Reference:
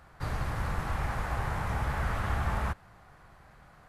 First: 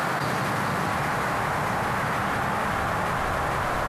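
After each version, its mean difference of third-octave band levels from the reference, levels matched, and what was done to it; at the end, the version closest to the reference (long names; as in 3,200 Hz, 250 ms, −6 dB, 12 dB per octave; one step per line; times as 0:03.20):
8.0 dB: high-pass filter 150 Hz 24 dB per octave
on a send: echo with shifted repeats 454 ms, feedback 48%, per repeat −33 Hz, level −4 dB
on the sum: envelope flattener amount 100%
level +6 dB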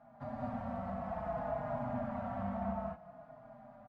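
10.5 dB: downward compressor, threshold −33 dBFS, peak gain reduction 8.5 dB
pair of resonant band-passes 390 Hz, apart 1.5 octaves
reverb whose tail is shaped and stops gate 250 ms rising, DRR −3 dB
barber-pole flanger 4.4 ms −0.58 Hz
level +11 dB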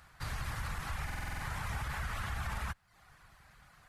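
5.0 dB: reverb reduction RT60 0.54 s
guitar amp tone stack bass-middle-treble 5-5-5
brickwall limiter −39 dBFS, peak gain reduction 5.5 dB
buffer that repeats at 0:01.05, samples 2,048, times 7
level +10.5 dB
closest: third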